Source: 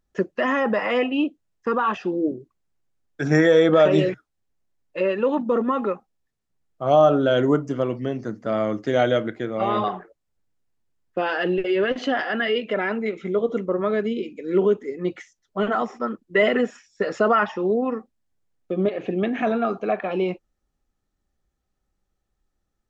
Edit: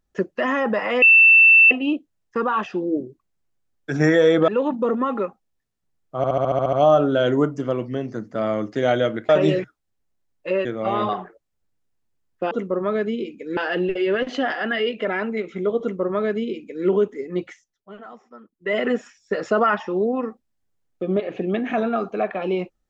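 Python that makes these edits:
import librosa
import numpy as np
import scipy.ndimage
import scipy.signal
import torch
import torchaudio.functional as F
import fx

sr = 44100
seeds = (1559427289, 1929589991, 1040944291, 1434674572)

y = fx.edit(x, sr, fx.insert_tone(at_s=1.02, length_s=0.69, hz=2670.0, db=-8.0),
    fx.move(start_s=3.79, length_s=1.36, to_s=9.4),
    fx.stutter(start_s=6.84, slice_s=0.07, count=9),
    fx.duplicate(start_s=13.49, length_s=1.06, to_s=11.26),
    fx.fade_down_up(start_s=15.14, length_s=1.48, db=-17.5, fade_s=0.41), tone=tone)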